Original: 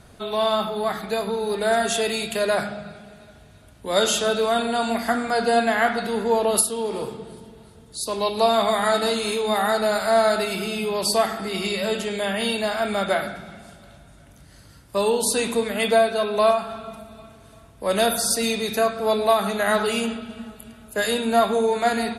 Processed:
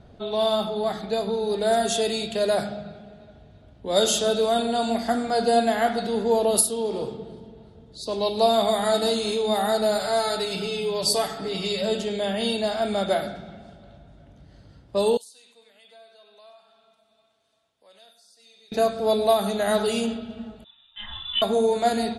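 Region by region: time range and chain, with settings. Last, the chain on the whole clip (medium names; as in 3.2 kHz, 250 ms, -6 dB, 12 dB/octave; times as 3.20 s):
9.99–11.82 s: dynamic bell 500 Hz, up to -5 dB, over -29 dBFS, Q 0.76 + comb 6.9 ms, depth 71%
15.17–18.72 s: differentiator + delay 95 ms -11.5 dB + compression 2:1, threshold -53 dBFS
20.64–21.42 s: static phaser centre 2.2 kHz, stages 8 + frequency inversion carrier 3.7 kHz + three-phase chorus
whole clip: level-controlled noise filter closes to 2.6 kHz, open at -16 dBFS; high-order bell 1.6 kHz -8 dB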